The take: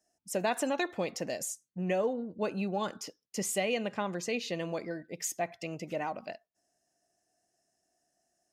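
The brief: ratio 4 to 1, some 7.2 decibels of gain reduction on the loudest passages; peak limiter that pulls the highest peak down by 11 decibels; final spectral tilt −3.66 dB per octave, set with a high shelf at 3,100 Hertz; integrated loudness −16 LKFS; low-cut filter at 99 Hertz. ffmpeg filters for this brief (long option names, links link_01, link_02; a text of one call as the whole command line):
ffmpeg -i in.wav -af "highpass=99,highshelf=frequency=3100:gain=3.5,acompressor=threshold=-34dB:ratio=4,volume=27.5dB,alimiter=limit=-6.5dB:level=0:latency=1" out.wav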